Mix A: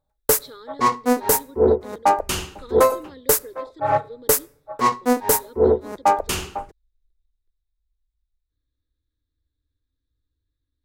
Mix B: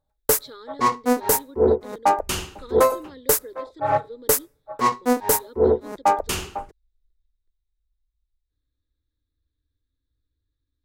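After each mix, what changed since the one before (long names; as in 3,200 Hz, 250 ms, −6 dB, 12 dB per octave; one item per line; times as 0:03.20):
background: send −9.5 dB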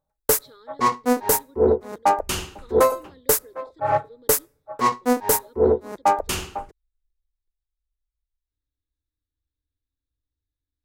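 speech −8.0 dB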